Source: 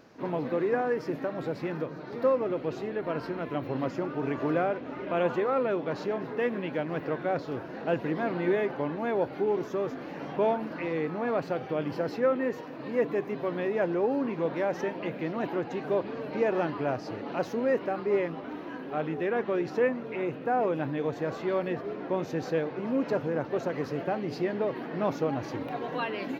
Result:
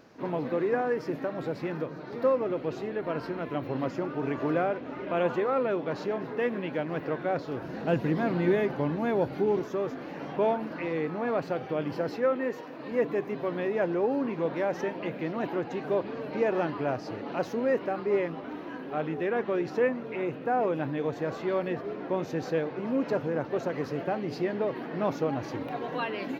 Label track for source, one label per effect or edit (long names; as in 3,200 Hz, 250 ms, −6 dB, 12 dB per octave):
7.620000	9.600000	bass and treble bass +8 dB, treble +6 dB
12.170000	12.920000	high-pass filter 210 Hz 6 dB per octave